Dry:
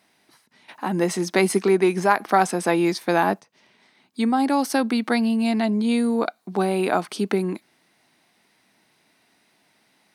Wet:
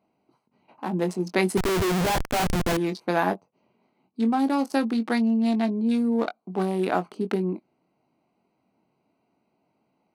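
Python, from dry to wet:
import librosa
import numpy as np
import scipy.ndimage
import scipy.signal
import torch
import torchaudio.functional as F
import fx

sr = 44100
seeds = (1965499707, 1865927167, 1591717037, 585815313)

y = fx.wiener(x, sr, points=25)
y = fx.doubler(y, sr, ms=22.0, db=-9.0)
y = fx.schmitt(y, sr, flips_db=-29.0, at=(1.57, 2.77))
y = y * 10.0 ** (-3.0 / 20.0)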